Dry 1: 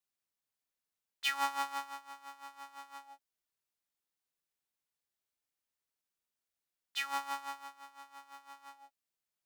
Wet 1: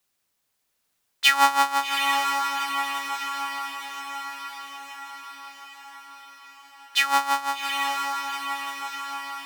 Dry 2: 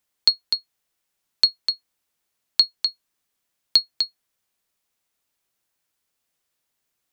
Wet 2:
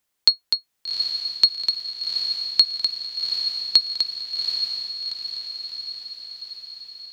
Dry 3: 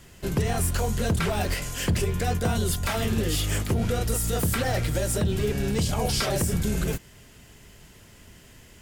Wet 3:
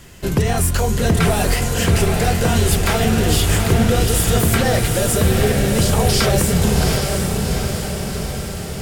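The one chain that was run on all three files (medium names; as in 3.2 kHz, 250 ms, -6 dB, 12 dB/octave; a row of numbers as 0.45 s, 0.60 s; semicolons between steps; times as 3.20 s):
echo that smears into a reverb 783 ms, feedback 61%, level -4 dB; peak normalisation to -3 dBFS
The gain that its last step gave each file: +15.0 dB, +1.5 dB, +7.5 dB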